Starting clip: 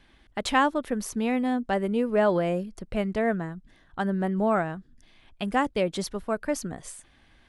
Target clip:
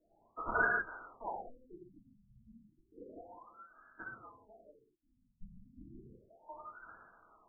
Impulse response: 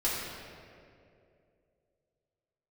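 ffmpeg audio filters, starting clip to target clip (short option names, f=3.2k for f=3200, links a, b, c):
-filter_complex "[0:a]lowpass=f=2.8k:t=q:w=0.5098,lowpass=f=2.8k:t=q:w=0.6013,lowpass=f=2.8k:t=q:w=0.9,lowpass=f=2.8k:t=q:w=2.563,afreqshift=-3300[a];[1:a]atrim=start_sample=2205,afade=t=out:st=0.26:d=0.01,atrim=end_sample=11907[b];[a][b]afir=irnorm=-1:irlink=0,afftfilt=real='re*lt(b*sr/1024,240*pow(1700/240,0.5+0.5*sin(2*PI*0.32*pts/sr)))':imag='im*lt(b*sr/1024,240*pow(1700/240,0.5+0.5*sin(2*PI*0.32*pts/sr)))':win_size=1024:overlap=0.75,volume=-4dB"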